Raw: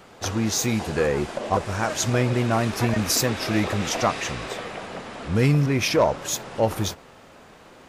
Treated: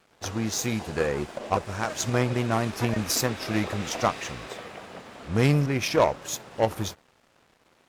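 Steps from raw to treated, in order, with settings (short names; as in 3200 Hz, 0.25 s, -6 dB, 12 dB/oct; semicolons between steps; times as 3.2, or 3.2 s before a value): crossover distortion -48 dBFS; added harmonics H 3 -16 dB, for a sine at -10 dBFS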